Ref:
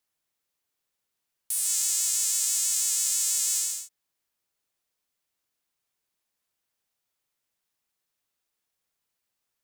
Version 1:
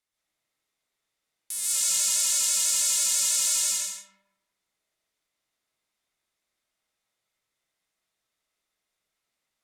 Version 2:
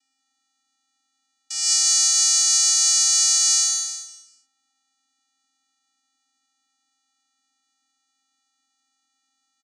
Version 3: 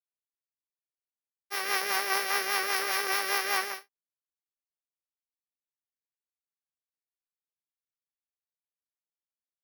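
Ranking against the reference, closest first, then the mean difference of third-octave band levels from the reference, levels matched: 1, 2, 3; 4.0 dB, 7.5 dB, 15.0 dB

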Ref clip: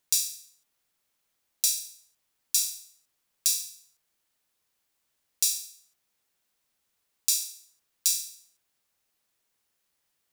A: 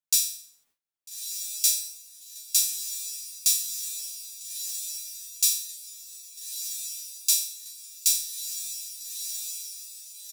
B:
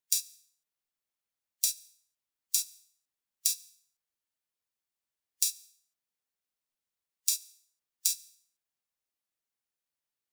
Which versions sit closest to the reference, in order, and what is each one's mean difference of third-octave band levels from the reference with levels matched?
A, B; 2.0 dB, 4.5 dB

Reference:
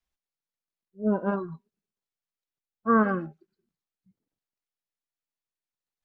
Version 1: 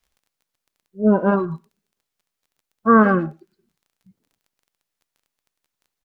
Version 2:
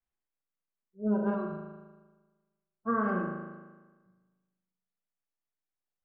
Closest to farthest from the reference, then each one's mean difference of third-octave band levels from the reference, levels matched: 1, 2; 1.0 dB, 3.5 dB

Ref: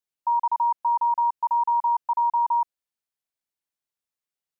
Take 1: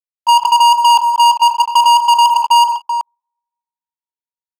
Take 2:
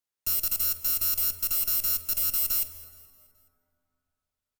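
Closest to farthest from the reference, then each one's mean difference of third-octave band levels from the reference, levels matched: 1, 2; 9.0 dB, 21.0 dB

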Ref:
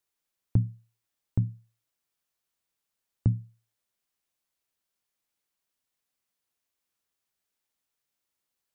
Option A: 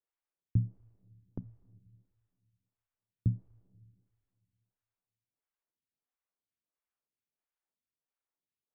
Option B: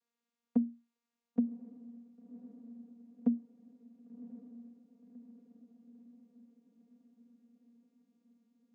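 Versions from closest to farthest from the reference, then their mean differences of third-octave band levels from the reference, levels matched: A, B; 2.5 dB, 6.5 dB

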